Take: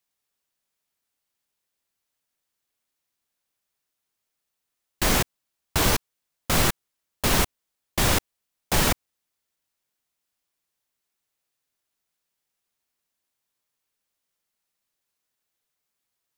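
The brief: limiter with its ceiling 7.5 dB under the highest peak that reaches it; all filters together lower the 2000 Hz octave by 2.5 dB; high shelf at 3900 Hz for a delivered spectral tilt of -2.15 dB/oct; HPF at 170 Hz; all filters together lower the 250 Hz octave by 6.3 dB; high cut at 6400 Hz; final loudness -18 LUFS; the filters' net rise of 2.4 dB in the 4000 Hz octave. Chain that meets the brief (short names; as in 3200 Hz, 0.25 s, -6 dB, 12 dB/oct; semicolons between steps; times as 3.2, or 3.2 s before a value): HPF 170 Hz; LPF 6400 Hz; bell 250 Hz -7 dB; bell 2000 Hz -4 dB; high shelf 3900 Hz -5 dB; bell 4000 Hz +8 dB; gain +13.5 dB; limiter -6 dBFS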